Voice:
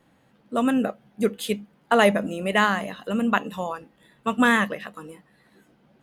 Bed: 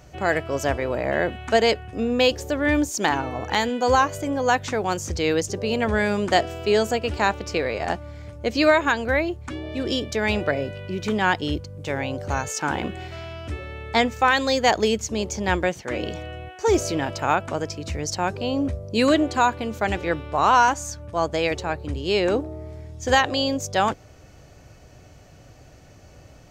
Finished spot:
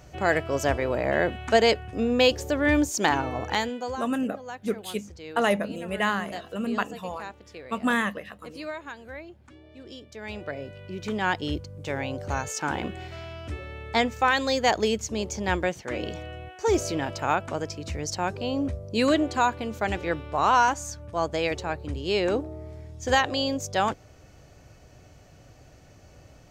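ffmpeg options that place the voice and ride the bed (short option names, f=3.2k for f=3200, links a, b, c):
-filter_complex "[0:a]adelay=3450,volume=-5.5dB[a];[1:a]volume=14dB,afade=t=out:st=3.38:d=0.6:silence=0.133352,afade=t=in:st=10.09:d=1.46:silence=0.177828[b];[a][b]amix=inputs=2:normalize=0"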